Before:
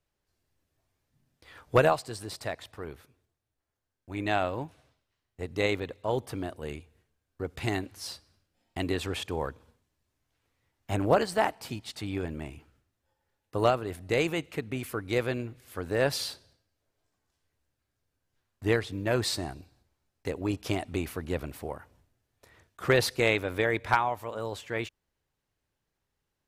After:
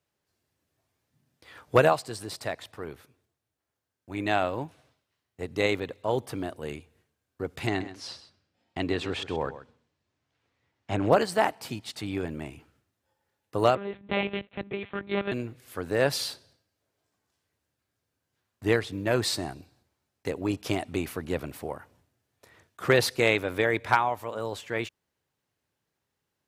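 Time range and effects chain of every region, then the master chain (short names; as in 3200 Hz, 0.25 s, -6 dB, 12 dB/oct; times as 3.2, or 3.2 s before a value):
7.67–11.12 LPF 5300 Hz + echo 0.13 s -13.5 dB
13.75–15.32 minimum comb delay 5.4 ms + expander -43 dBFS + monotone LPC vocoder at 8 kHz 200 Hz
whole clip: HPF 100 Hz; de-esser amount 40%; gain +2 dB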